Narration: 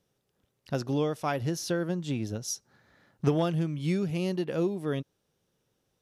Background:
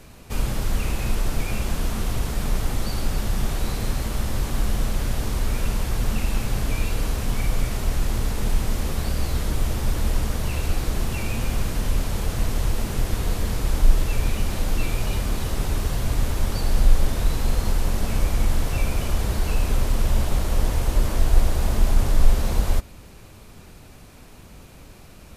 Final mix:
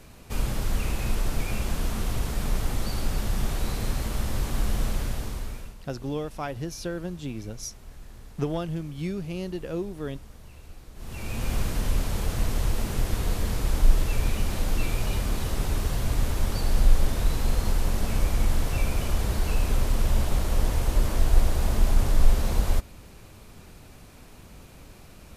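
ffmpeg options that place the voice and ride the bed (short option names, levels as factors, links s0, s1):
-filter_complex "[0:a]adelay=5150,volume=0.708[s0];[1:a]volume=6.68,afade=t=out:st=4.9:d=0.85:silence=0.112202,afade=t=in:st=10.95:d=0.59:silence=0.105925[s1];[s0][s1]amix=inputs=2:normalize=0"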